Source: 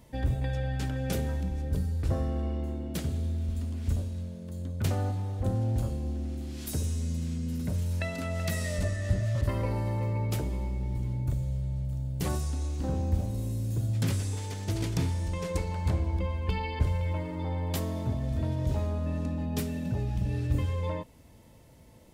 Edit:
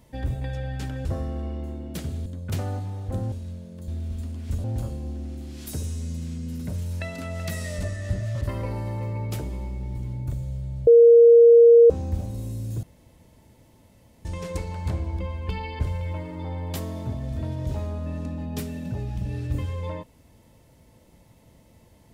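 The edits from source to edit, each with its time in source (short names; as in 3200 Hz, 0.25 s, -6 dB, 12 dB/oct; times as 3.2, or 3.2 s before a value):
1.05–2.05 cut
3.26–4.02 swap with 4.58–5.64
11.87–12.9 bleep 468 Hz -8.5 dBFS
13.83–15.25 room tone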